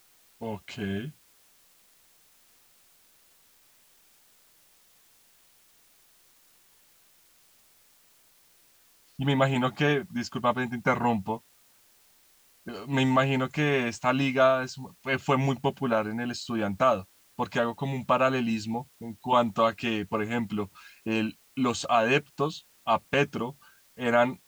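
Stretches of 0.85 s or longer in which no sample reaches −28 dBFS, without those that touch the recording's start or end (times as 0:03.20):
0:01.01–0:09.20
0:11.35–0:12.68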